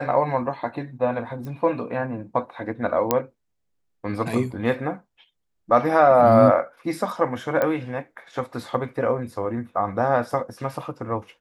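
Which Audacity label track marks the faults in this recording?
1.450000	1.450000	pop -24 dBFS
3.110000	3.110000	pop -4 dBFS
7.620000	7.620000	pop -11 dBFS

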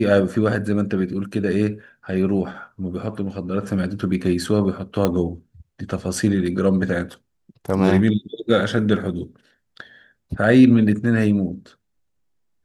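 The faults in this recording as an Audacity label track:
5.050000	5.050000	pop -6 dBFS

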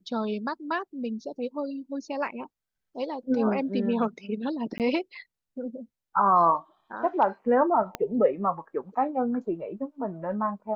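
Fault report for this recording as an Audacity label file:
4.780000	4.800000	gap 18 ms
7.950000	7.950000	pop -15 dBFS

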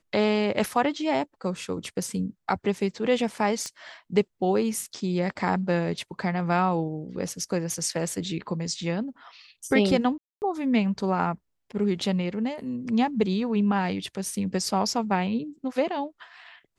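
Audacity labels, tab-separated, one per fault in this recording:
3.660000	3.660000	pop -19 dBFS
10.180000	10.420000	gap 0.239 s

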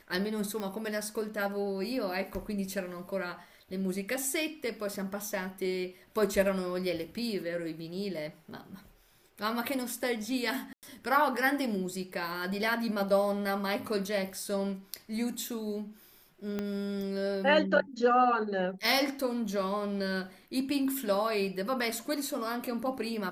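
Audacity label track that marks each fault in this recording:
0.600000	0.600000	pop -23 dBFS
10.730000	10.830000	gap 98 ms
16.590000	16.590000	pop -20 dBFS

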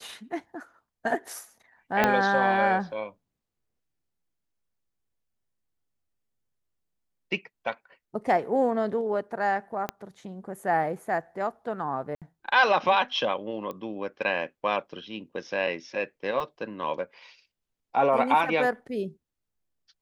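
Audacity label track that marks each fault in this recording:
2.040000	2.040000	pop -7 dBFS
9.890000	9.890000	pop -15 dBFS
12.150000	12.220000	gap 67 ms
13.710000	13.710000	pop -23 dBFS
16.400000	16.400000	gap 2.8 ms

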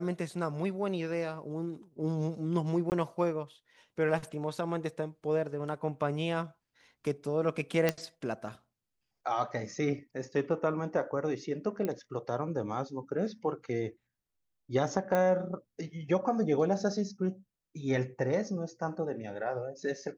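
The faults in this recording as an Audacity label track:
2.900000	2.920000	gap 19 ms
7.890000	7.890000	pop -12 dBFS
11.850000	11.850000	pop -20 dBFS
15.150000	15.150000	pop -17 dBFS

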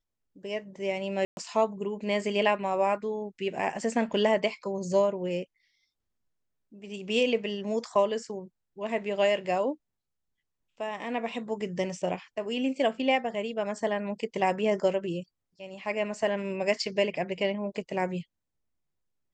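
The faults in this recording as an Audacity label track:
1.250000	1.370000	gap 0.121 s

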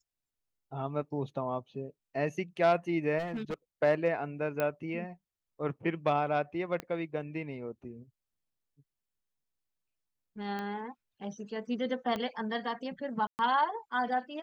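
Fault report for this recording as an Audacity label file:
3.180000	3.540000	clipped -31.5 dBFS
4.600000	4.600000	pop -17 dBFS
6.800000	6.800000	pop -22 dBFS
10.590000	10.590000	pop -25 dBFS
12.160000	12.160000	pop -22 dBFS
13.270000	13.390000	gap 0.119 s

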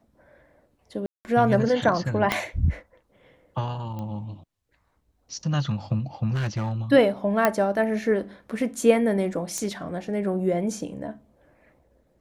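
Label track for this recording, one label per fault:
1.060000	1.250000	gap 0.189 s
2.320000	2.320000	pop -8 dBFS
3.990000	3.990000	pop -23 dBFS
6.320000	6.720000	clipped -22.5 dBFS
7.450000	7.450000	pop -6 dBFS
9.580000	9.580000	pop -14 dBFS

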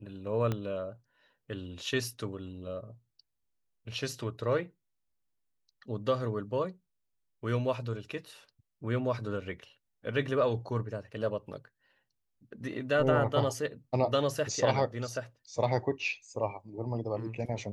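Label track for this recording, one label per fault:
0.520000	0.520000	pop -19 dBFS

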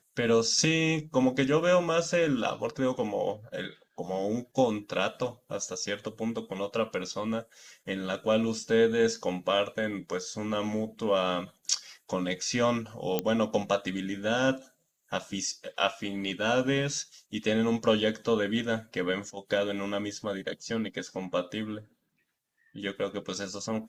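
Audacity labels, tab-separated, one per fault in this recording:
13.190000	13.190000	pop -12 dBFS

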